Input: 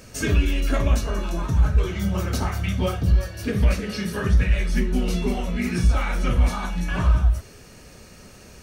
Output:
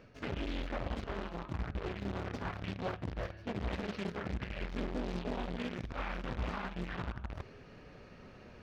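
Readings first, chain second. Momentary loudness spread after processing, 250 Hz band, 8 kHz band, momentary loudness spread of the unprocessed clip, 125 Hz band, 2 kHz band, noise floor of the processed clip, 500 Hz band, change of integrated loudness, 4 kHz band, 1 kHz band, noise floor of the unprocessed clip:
12 LU, −13.5 dB, −25.5 dB, 6 LU, −19.0 dB, −12.5 dB, −54 dBFS, −11.0 dB, −16.5 dB, −13.5 dB, −10.0 dB, −46 dBFS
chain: low-shelf EQ 130 Hz −6 dB
reversed playback
downward compressor 5 to 1, threshold −36 dBFS, peak gain reduction 16.5 dB
reversed playback
flanger 0.38 Hz, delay 6.6 ms, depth 4.1 ms, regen −64%
in parallel at −8 dB: log-companded quantiser 2 bits
on the sum: high-frequency loss of the air 320 metres
highs frequency-modulated by the lows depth 1 ms

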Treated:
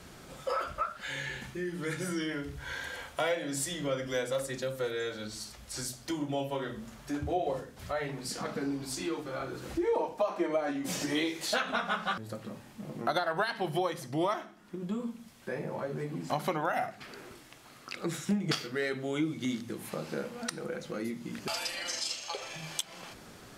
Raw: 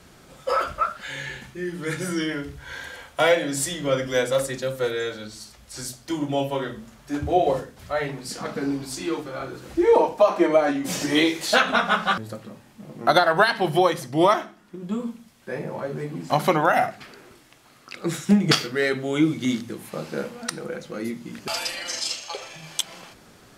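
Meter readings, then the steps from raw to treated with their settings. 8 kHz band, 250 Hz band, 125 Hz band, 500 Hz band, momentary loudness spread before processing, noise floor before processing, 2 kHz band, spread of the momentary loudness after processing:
−7.0 dB, −9.5 dB, −8.5 dB, −10.5 dB, 16 LU, −52 dBFS, −10.0 dB, 11 LU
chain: downward compressor 2 to 1, threshold −37 dBFS, peak gain reduction 13.5 dB

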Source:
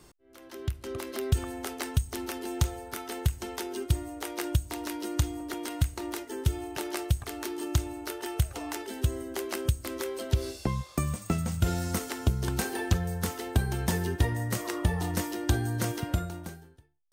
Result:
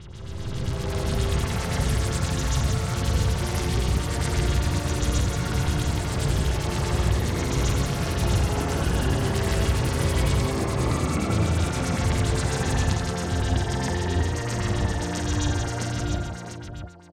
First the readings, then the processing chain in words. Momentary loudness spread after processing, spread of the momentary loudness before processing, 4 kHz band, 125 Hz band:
4 LU, 8 LU, +7.5 dB, +7.0 dB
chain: peak hold with a rise ahead of every peak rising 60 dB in 2.96 s
auto-filter low-pass sine 7.6 Hz 580–7,200 Hz
delay with pitch and tempo change per echo 152 ms, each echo +4 semitones, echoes 2
multi-tap delay 84/178/696 ms −7/−5/−8 dB
level −5.5 dB

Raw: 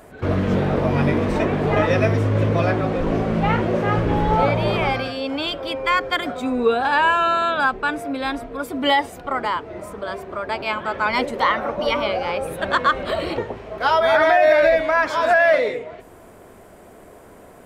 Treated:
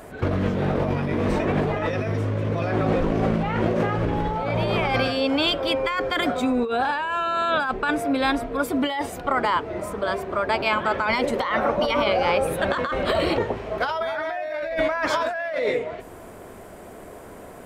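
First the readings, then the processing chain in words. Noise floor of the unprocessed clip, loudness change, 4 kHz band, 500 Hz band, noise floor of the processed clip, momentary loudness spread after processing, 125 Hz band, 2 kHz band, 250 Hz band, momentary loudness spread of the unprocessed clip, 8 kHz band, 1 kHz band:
−45 dBFS, −3.5 dB, −1.0 dB, −3.5 dB, −42 dBFS, 7 LU, −3.5 dB, −5.0 dB, −1.0 dB, 11 LU, +1.0 dB, −4.5 dB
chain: compressor whose output falls as the input rises −23 dBFS, ratio −1

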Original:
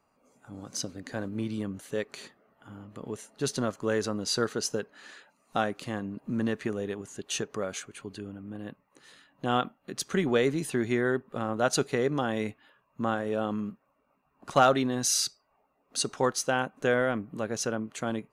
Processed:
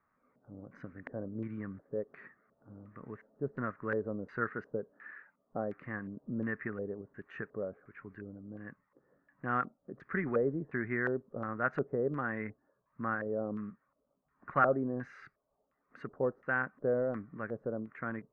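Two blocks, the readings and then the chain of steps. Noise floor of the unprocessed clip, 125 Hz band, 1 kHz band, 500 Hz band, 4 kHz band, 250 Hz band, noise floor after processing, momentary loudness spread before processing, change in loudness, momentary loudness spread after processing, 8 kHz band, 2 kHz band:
−72 dBFS, −6.0 dB, −6.5 dB, −6.0 dB, below −35 dB, −7.0 dB, −80 dBFS, 15 LU, −6.5 dB, 17 LU, below −40 dB, −3.0 dB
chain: drawn EQ curve 150 Hz 0 dB, 830 Hz −7 dB, 1,200 Hz +2 dB, 1,800 Hz +2 dB, 3,200 Hz −26 dB
auto-filter low-pass square 1.4 Hz 570–2,200 Hz
level −6 dB

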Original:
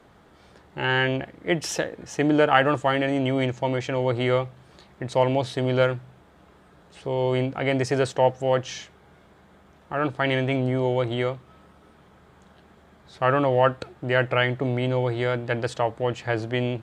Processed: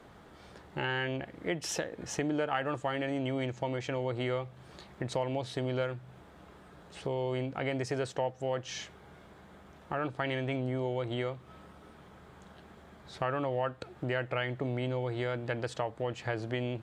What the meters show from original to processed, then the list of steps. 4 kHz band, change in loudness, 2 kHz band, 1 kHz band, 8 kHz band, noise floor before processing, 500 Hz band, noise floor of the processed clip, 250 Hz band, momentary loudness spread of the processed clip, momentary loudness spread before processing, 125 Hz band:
−9.5 dB, −10.5 dB, −10.5 dB, −11.0 dB, −5.0 dB, −55 dBFS, −10.5 dB, −55 dBFS, −9.5 dB, 21 LU, 9 LU, −9.5 dB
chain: downward compressor 3 to 1, threshold −33 dBFS, peak gain reduction 15 dB

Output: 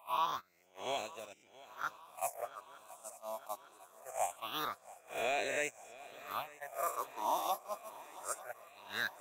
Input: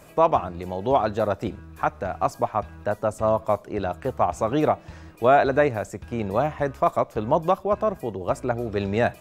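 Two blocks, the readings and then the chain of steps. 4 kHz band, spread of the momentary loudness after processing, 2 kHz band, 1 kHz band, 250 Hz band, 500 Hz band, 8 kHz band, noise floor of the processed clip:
−2.0 dB, 17 LU, −9.0 dB, −14.0 dB, −27.0 dB, −20.0 dB, can't be measured, −66 dBFS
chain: peak hold with a rise ahead of every peak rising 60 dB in 1.41 s
noise gate −17 dBFS, range −24 dB
first difference
in parallel at −10 dB: soft clipping −32.5 dBFS, distortion −11 dB
on the sum: all-pass phaser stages 6, 0.23 Hz, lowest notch 120–1,300 Hz
on a send: feedback echo with a long and a short gap by turns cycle 903 ms, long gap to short 3 to 1, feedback 66%, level −19.5 dB
on the sum: level +3 dB

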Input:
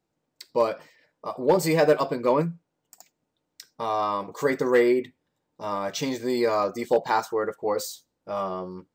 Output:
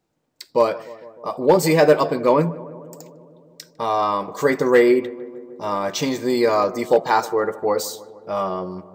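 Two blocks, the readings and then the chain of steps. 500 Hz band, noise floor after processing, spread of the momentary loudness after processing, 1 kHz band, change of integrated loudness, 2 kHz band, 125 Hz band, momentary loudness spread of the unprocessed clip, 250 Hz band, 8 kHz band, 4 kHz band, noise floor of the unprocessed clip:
+5.5 dB, −59 dBFS, 17 LU, +5.5 dB, +5.5 dB, +5.5 dB, +5.5 dB, 14 LU, +5.5 dB, +5.5 dB, +5.5 dB, −80 dBFS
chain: feedback echo with a low-pass in the loop 152 ms, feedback 74%, low-pass 1,600 Hz, level −18 dB
level +5.5 dB

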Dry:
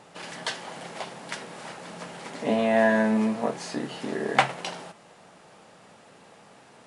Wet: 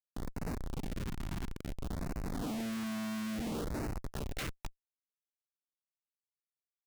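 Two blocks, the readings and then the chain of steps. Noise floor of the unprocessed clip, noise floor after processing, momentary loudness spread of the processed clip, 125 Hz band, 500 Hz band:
−53 dBFS, below −85 dBFS, 6 LU, −1.0 dB, −18.0 dB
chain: gain on a spectral selection 0:02.88–0:04.13, 1,300–7,700 Hz −9 dB
bass and treble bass +12 dB, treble −7 dB
single-tap delay 86 ms −15.5 dB
four-comb reverb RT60 0.44 s, DRR 6 dB
band-pass filter sweep 290 Hz → 7,800 Hz, 0:03.54–0:04.54
comparator with hysteresis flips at −39.5 dBFS
auto-filter notch sine 0.58 Hz 470–3,400 Hz
level −6.5 dB

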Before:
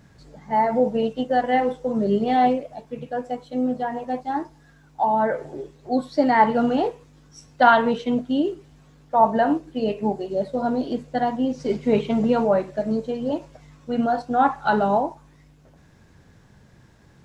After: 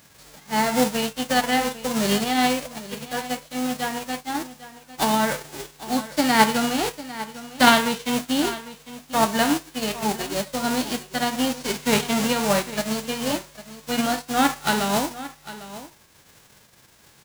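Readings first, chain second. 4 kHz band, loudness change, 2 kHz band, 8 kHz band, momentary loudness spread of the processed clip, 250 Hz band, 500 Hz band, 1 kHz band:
+13.5 dB, −0.5 dB, +4.5 dB, can't be measured, 16 LU, −0.5 dB, −4.0 dB, −2.5 dB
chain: spectral envelope flattened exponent 0.3
shaped tremolo triangle 1.6 Hz, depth 35%
single-tap delay 801 ms −15.5 dB

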